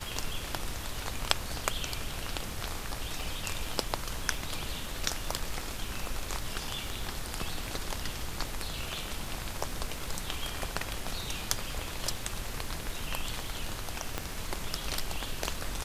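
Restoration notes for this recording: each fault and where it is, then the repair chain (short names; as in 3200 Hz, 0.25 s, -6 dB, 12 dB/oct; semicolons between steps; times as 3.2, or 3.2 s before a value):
crackle 24/s -39 dBFS
14.18 pop -15 dBFS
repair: de-click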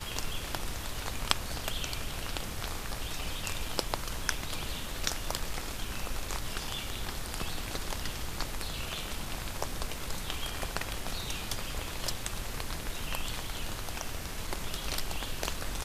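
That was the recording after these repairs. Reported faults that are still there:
14.18 pop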